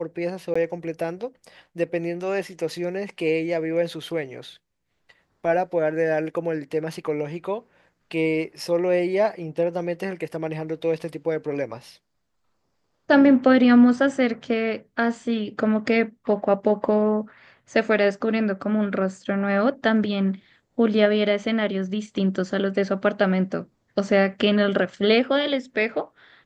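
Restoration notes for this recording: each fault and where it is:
0.54–0.56 gap 15 ms

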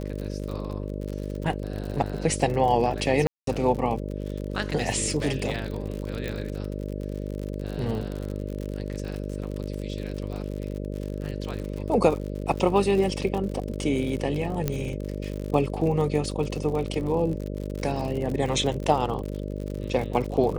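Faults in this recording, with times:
buzz 50 Hz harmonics 12 -32 dBFS
crackle 60/s -31 dBFS
3.27–3.47 gap 0.203 s
6.28 pop
14.68 pop -11 dBFS

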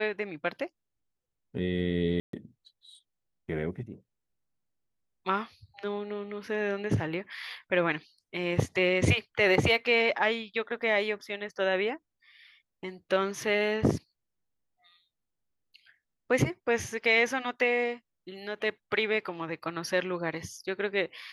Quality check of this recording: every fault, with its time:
2.2–2.33 gap 0.133 s

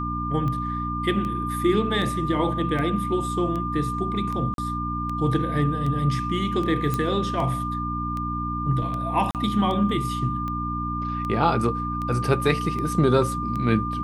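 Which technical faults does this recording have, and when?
hum 60 Hz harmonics 5 -30 dBFS
tick 78 rpm -20 dBFS
tone 1200 Hz -28 dBFS
4.54–4.58 gap 42 ms
6.94 pop -12 dBFS
9.31–9.35 gap 38 ms

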